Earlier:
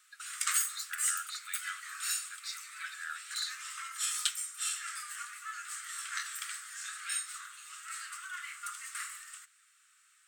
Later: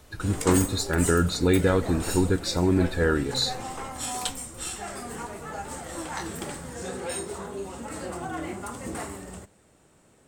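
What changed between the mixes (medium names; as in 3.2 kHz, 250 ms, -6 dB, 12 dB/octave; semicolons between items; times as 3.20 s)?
speech +11.0 dB; master: remove steep high-pass 1.2 kHz 96 dB/octave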